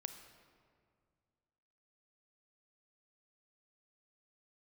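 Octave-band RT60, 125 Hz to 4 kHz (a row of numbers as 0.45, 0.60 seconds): 2.6, 2.4, 2.2, 2.0, 1.6, 1.2 seconds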